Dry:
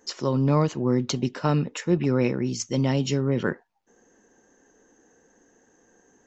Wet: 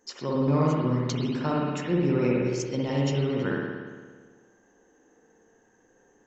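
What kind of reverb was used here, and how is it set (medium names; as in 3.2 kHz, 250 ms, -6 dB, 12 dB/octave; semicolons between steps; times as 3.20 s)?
spring tank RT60 1.5 s, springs 57 ms, chirp 60 ms, DRR -4 dB; trim -6.5 dB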